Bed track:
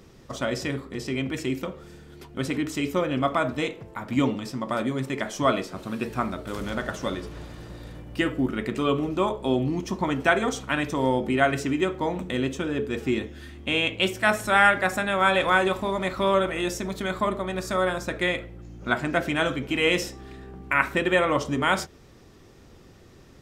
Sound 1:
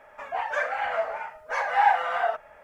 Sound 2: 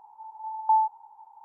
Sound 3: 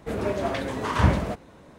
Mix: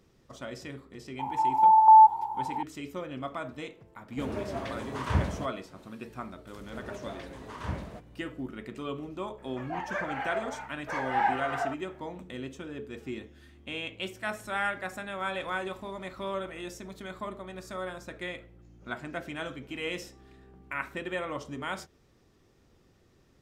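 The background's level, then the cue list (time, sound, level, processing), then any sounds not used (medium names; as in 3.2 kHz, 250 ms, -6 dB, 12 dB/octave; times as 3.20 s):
bed track -12.5 dB
1.19 s: add 2 -8.5 dB + loudness maximiser +26 dB
4.11 s: add 3 -8.5 dB + peaking EQ 84 Hz +3 dB
6.65 s: add 3 -15 dB
9.38 s: add 1 -6.5 dB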